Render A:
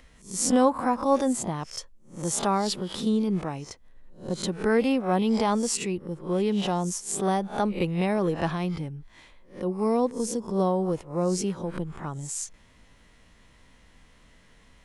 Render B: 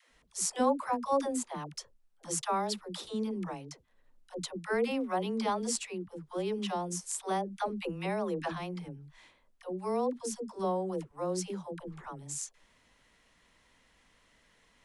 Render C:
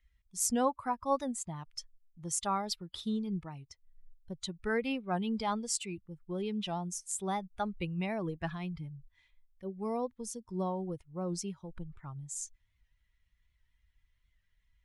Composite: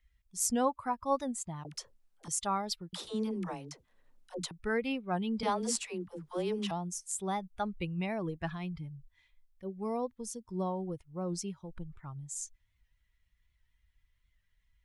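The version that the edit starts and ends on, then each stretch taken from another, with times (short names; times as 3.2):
C
1.65–2.28 from B
2.93–4.51 from B
5.43–6.71 from B
not used: A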